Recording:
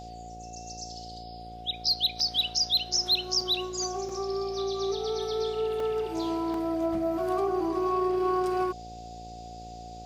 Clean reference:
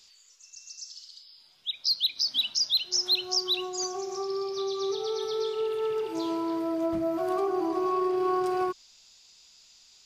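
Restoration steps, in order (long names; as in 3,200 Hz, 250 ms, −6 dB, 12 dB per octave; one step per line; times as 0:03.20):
hum removal 57.3 Hz, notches 14
notch filter 730 Hz, Q 30
repair the gap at 0:02.20/0:03.41/0:04.09/0:05.80/0:06.54, 2.5 ms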